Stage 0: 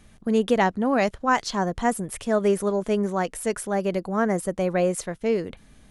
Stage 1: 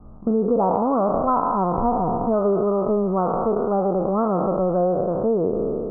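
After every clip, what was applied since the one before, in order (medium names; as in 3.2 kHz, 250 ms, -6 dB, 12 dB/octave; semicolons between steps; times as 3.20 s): spectral sustain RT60 2.02 s; steep low-pass 1.3 kHz 96 dB/octave; compression 3:1, threshold -26 dBFS, peak gain reduction 9.5 dB; trim +7 dB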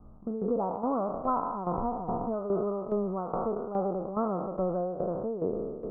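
tremolo saw down 2.4 Hz, depth 70%; trim -7 dB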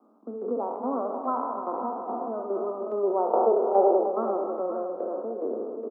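time-frequency box 3.04–4.07 s, 340–1000 Hz +10 dB; steep high-pass 230 Hz 72 dB/octave; on a send: multi-tap echo 61/81/301/529 ms -11/-17.5/-10.5/-9.5 dB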